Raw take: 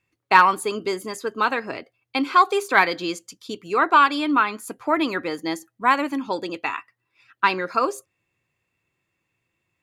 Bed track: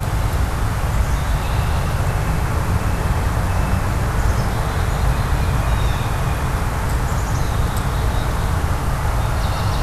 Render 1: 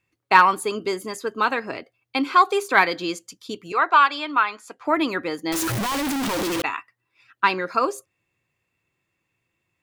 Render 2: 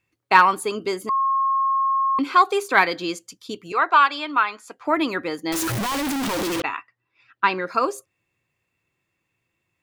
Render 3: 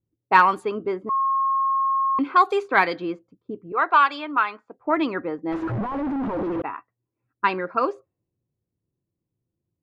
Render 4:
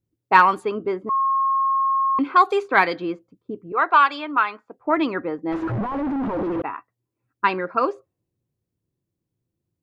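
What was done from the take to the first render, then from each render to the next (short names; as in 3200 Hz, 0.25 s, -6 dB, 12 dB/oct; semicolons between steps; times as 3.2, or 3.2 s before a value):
3.72–4.85 three-band isolator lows -14 dB, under 500 Hz, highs -20 dB, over 7300 Hz; 5.52–6.62 infinite clipping
1.09–2.19 bleep 1080 Hz -17.5 dBFS; 6.6–7.67 Bessel low-pass 4000 Hz
low-pass opened by the level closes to 350 Hz, open at -13.5 dBFS; high shelf 2900 Hz -8.5 dB
gain +1.5 dB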